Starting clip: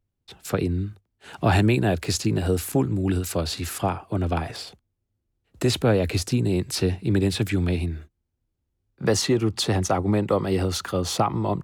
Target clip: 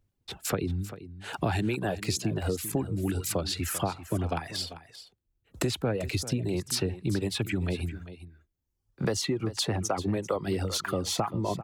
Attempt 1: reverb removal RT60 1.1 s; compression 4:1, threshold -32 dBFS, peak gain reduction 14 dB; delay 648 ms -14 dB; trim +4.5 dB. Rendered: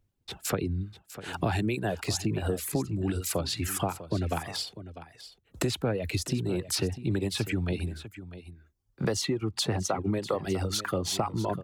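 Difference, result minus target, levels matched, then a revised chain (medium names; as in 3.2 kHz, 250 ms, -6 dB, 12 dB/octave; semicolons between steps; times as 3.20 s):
echo 255 ms late
reverb removal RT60 1.1 s; compression 4:1, threshold -32 dBFS, peak gain reduction 14 dB; delay 393 ms -14 dB; trim +4.5 dB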